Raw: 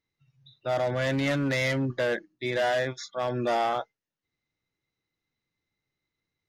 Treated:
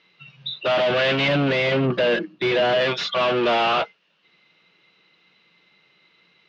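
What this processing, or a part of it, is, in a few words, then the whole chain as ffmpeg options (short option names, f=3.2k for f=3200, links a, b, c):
overdrive pedal into a guitar cabinet: -filter_complex "[0:a]asplit=2[a][b];[b]highpass=f=720:p=1,volume=31dB,asoftclip=type=tanh:threshold=-18.5dB[c];[a][c]amix=inputs=2:normalize=0,lowpass=f=6.6k:p=1,volume=-6dB,highpass=100,equalizer=f=110:t=q:w=4:g=-10,equalizer=f=180:t=q:w=4:g=9,equalizer=f=270:t=q:w=4:g=-6,equalizer=f=820:t=q:w=4:g=-4,equalizer=f=1.9k:t=q:w=4:g=-5,equalizer=f=2.8k:t=q:w=4:g=8,lowpass=f=4.1k:w=0.5412,lowpass=f=4.1k:w=1.3066,asettb=1/sr,asplit=3[d][e][f];[d]atrim=end=1.284[g];[e]atrim=start=1.28:end=2.81,asetpts=PTS-STARTPTS,afade=t=in:d=0.004:c=qsin,afade=t=out:st=1.526:d=0.004:c=qsin,tiltshelf=f=700:g=4.5[h];[f]atrim=start=2.806[i];[g][h]acrossfade=d=0.004:c1=hsin:c2=qsin[j];[j][i]acrossfade=d=0.004:c1=qsin:c2=hsin,volume=4.5dB"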